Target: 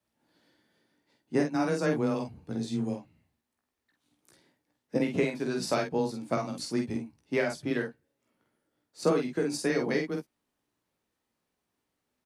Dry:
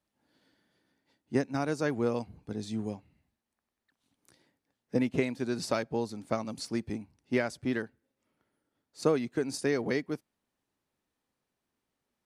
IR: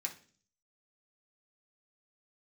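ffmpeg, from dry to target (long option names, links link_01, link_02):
-af "afreqshift=15,aecho=1:1:17|48|61:0.501|0.596|0.266"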